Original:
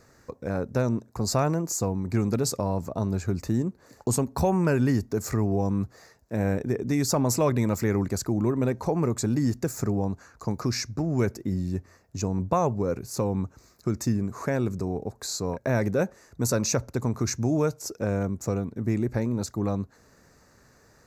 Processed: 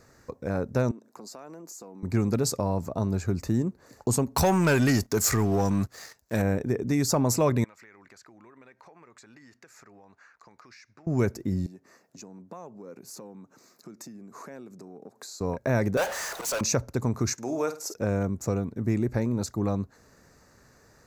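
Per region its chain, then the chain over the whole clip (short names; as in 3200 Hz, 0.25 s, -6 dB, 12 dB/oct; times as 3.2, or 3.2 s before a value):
0.91–2.03 HPF 220 Hz 24 dB/oct + compressor 5:1, threshold -42 dBFS
4.36–6.42 tilt shelf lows -6 dB, about 1200 Hz + sample leveller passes 2
7.64–11.07 band-pass 2000 Hz, Q 1.4 + compressor, threshold -49 dBFS
11.66–15.41 compressor 5:1, threshold -40 dBFS + HPF 180 Hz 24 dB/oct
15.97–16.61 HPF 630 Hz 24 dB/oct + auto swell 0.448 s + power-law curve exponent 0.35
17.33–17.94 HPF 400 Hz + flutter echo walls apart 8.5 m, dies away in 0.31 s
whole clip: dry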